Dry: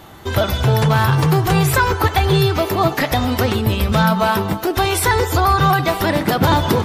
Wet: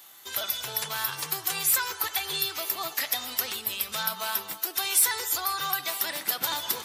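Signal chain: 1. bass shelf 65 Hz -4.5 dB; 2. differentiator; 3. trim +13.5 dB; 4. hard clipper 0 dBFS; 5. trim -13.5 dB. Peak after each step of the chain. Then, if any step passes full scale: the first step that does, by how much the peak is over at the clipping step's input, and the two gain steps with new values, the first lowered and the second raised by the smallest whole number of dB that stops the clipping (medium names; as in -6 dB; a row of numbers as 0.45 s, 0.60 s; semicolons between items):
-5.0 dBFS, -6.0 dBFS, +7.5 dBFS, 0.0 dBFS, -13.5 dBFS; step 3, 7.5 dB; step 3 +5.5 dB, step 5 -5.5 dB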